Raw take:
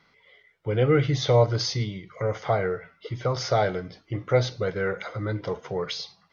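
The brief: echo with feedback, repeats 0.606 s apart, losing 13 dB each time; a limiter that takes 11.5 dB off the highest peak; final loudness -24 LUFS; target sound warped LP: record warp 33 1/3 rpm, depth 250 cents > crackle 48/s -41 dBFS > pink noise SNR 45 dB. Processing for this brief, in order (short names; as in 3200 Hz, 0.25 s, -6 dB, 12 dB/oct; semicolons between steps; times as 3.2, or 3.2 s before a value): limiter -18.5 dBFS; feedback echo 0.606 s, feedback 22%, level -13 dB; record warp 33 1/3 rpm, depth 250 cents; crackle 48/s -41 dBFS; pink noise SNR 45 dB; gain +5.5 dB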